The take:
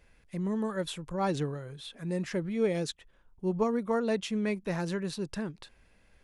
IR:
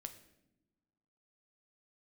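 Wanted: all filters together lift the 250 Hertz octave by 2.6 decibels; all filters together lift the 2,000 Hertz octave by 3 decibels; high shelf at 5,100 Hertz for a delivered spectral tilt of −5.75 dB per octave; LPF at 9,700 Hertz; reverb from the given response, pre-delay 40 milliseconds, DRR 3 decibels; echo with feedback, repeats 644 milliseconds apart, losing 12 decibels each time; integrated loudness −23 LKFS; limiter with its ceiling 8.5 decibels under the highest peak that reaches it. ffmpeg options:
-filter_complex "[0:a]lowpass=9700,equalizer=frequency=250:width_type=o:gain=3.5,equalizer=frequency=2000:width_type=o:gain=4,highshelf=frequency=5100:gain=-3,alimiter=limit=-24dB:level=0:latency=1,aecho=1:1:644|1288|1932:0.251|0.0628|0.0157,asplit=2[link_01][link_02];[1:a]atrim=start_sample=2205,adelay=40[link_03];[link_02][link_03]afir=irnorm=-1:irlink=0,volume=1.5dB[link_04];[link_01][link_04]amix=inputs=2:normalize=0,volume=8.5dB"

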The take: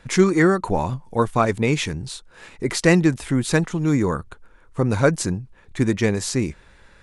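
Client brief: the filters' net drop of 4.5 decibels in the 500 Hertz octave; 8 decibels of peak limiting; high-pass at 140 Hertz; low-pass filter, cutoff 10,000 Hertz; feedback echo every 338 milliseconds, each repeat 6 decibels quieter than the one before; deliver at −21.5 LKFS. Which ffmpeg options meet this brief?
ffmpeg -i in.wav -af "highpass=140,lowpass=10000,equalizer=frequency=500:width_type=o:gain=-6,alimiter=limit=-13.5dB:level=0:latency=1,aecho=1:1:338|676|1014|1352|1690|2028:0.501|0.251|0.125|0.0626|0.0313|0.0157,volume=3.5dB" out.wav

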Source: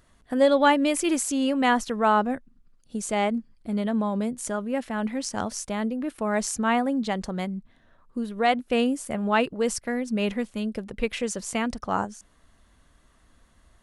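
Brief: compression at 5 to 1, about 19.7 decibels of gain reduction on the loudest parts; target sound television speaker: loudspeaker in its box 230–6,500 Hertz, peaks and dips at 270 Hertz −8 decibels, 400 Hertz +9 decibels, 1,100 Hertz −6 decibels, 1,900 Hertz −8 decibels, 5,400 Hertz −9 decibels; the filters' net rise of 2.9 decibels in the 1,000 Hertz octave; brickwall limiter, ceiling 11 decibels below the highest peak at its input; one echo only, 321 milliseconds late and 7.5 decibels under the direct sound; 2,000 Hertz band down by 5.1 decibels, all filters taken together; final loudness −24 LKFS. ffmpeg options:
ffmpeg -i in.wav -af "equalizer=frequency=1000:width_type=o:gain=7,equalizer=frequency=2000:width_type=o:gain=-5,acompressor=threshold=-35dB:ratio=5,alimiter=level_in=8.5dB:limit=-24dB:level=0:latency=1,volume=-8.5dB,highpass=frequency=230:width=0.5412,highpass=frequency=230:width=1.3066,equalizer=frequency=270:width_type=q:width=4:gain=-8,equalizer=frequency=400:width_type=q:width=4:gain=9,equalizer=frequency=1100:width_type=q:width=4:gain=-6,equalizer=frequency=1900:width_type=q:width=4:gain=-8,equalizer=frequency=5400:width_type=q:width=4:gain=-9,lowpass=frequency=6500:width=0.5412,lowpass=frequency=6500:width=1.3066,aecho=1:1:321:0.422,volume=19dB" out.wav

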